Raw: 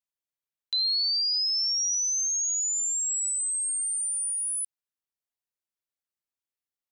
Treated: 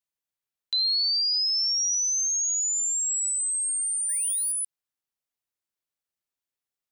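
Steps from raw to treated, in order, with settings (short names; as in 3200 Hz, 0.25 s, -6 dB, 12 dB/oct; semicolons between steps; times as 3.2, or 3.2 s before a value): 4.09–4.52 sample leveller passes 2; gain +1.5 dB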